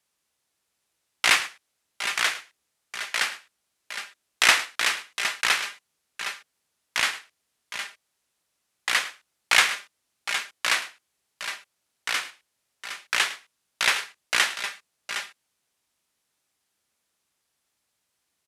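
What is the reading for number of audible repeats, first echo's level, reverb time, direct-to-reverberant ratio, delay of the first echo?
2, -17.0 dB, none, none, 0.107 s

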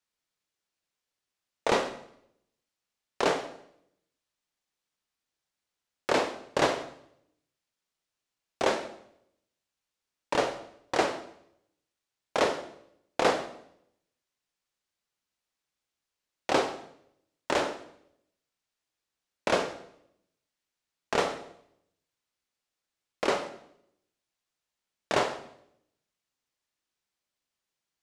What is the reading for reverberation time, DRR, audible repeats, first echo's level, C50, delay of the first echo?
0.75 s, 9.0 dB, none, none, 12.5 dB, none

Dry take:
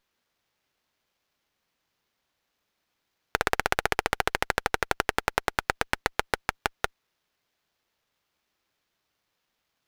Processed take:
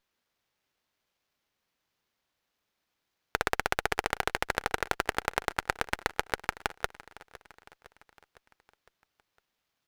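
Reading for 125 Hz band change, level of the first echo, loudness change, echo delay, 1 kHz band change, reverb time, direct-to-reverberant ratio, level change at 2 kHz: -3.5 dB, -19.0 dB, -3.5 dB, 0.508 s, -3.5 dB, none, none, -3.5 dB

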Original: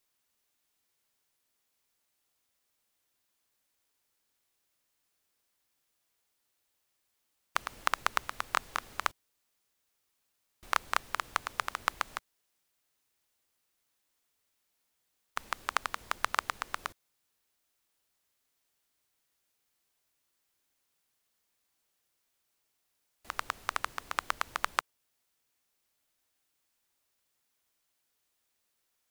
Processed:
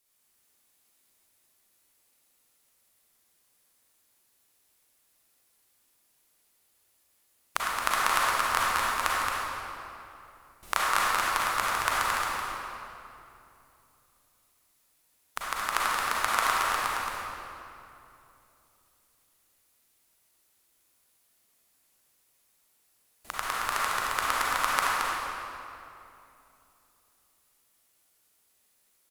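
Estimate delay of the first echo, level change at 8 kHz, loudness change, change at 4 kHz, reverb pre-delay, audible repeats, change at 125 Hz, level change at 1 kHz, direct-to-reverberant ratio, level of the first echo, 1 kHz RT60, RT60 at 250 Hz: 0.222 s, +10.5 dB, +6.5 dB, +7.5 dB, 34 ms, 1, +8.5 dB, +8.0 dB, -7.0 dB, -5.0 dB, 2.7 s, 3.5 s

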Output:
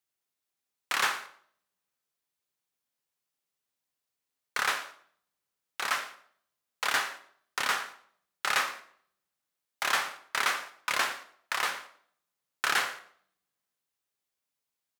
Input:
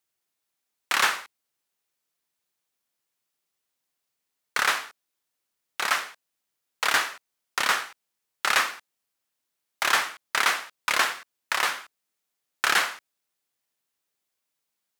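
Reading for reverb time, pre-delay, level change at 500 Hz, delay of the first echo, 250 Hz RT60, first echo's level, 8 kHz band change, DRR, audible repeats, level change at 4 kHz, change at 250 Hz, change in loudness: 0.55 s, 3 ms, -4.5 dB, 0.115 s, 0.70 s, -20.0 dB, -5.5 dB, 9.5 dB, 2, -5.5 dB, -5.0 dB, -5.0 dB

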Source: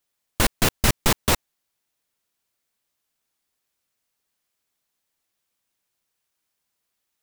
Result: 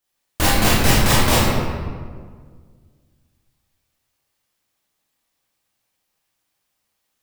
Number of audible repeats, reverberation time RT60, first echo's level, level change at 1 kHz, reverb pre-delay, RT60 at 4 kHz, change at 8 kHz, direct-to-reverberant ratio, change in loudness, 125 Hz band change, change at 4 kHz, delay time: none, 1.8 s, none, +7.5 dB, 19 ms, 1.0 s, +4.0 dB, -8.0 dB, +4.5 dB, +8.0 dB, +5.5 dB, none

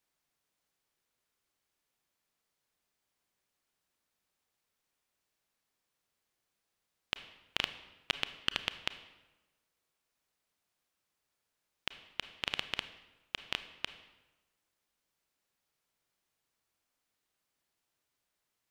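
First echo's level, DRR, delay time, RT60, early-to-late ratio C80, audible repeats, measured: none, 11.0 dB, none, 1.1 s, 14.5 dB, none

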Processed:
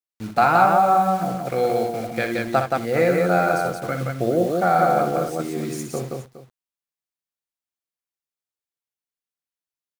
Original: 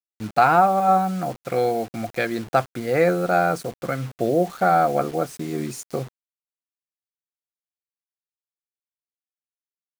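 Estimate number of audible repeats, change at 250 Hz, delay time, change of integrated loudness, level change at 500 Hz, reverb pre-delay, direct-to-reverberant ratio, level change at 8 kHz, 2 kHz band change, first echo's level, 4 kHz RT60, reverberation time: 4, +1.0 dB, 61 ms, +1.0 dB, +1.0 dB, none, none, +1.5 dB, +1.5 dB, -7.5 dB, none, none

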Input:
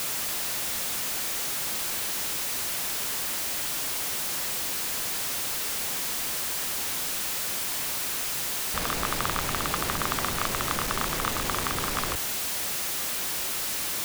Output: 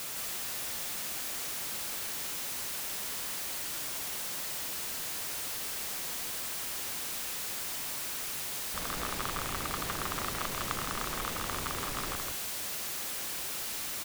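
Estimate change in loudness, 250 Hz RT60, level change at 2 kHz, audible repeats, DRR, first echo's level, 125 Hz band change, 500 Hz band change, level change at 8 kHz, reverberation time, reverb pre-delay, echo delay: -6.5 dB, none, -7.0 dB, 1, none, -3.0 dB, -6.5 dB, -6.5 dB, -6.5 dB, none, none, 0.163 s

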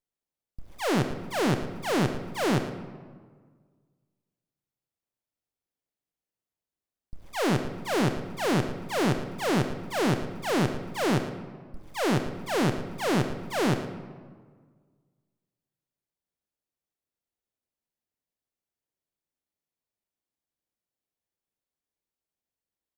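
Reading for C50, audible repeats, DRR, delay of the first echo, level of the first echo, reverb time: 8.5 dB, 1, 7.5 dB, 0.112 s, -14.0 dB, 1.7 s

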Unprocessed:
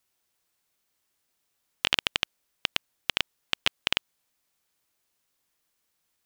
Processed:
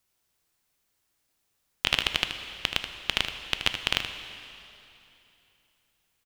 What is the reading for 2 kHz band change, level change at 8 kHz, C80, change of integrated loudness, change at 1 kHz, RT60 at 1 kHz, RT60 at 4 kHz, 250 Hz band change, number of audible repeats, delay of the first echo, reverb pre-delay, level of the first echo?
+1.0 dB, +1.0 dB, 9.5 dB, +0.5 dB, +1.5 dB, 3.0 s, 2.8 s, +2.5 dB, 1, 78 ms, 6 ms, -9.5 dB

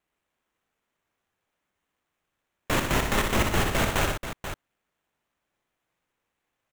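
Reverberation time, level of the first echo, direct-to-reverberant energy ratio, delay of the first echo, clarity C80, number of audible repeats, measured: none, -7.0 dB, none, 63 ms, none, 3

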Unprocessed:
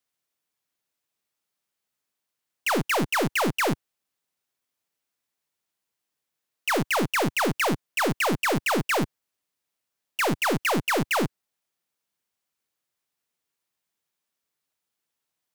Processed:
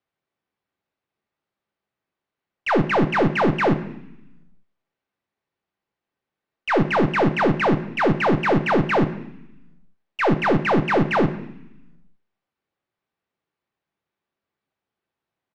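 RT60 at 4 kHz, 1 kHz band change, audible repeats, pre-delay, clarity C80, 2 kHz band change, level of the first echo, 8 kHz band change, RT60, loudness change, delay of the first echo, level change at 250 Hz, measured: 1.1 s, +5.0 dB, 2, 3 ms, 15.0 dB, +2.0 dB, -19.5 dB, under -15 dB, 0.80 s, +4.5 dB, 0.102 s, +7.5 dB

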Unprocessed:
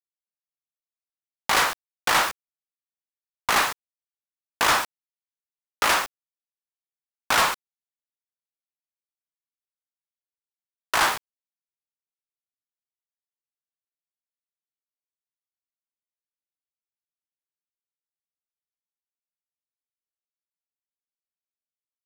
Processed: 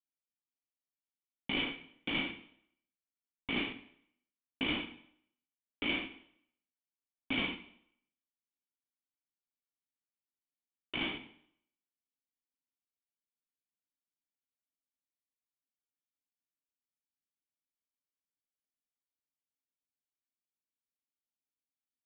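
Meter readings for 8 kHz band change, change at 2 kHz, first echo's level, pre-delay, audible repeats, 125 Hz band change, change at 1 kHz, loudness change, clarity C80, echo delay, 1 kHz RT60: under -40 dB, -13.5 dB, -15.0 dB, 4 ms, 1, -4.5 dB, -24.5 dB, -14.0 dB, 15.0 dB, 65 ms, 0.70 s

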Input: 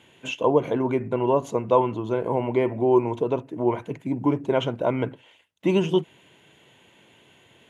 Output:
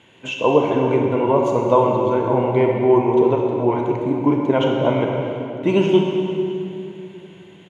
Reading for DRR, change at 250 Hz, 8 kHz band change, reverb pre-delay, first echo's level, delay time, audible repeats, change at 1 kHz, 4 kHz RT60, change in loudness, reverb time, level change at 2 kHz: 0.5 dB, +6.5 dB, n/a, 27 ms, -14.5 dB, 0.229 s, 1, +6.0 dB, 2.1 s, +6.0 dB, 2.8 s, +6.0 dB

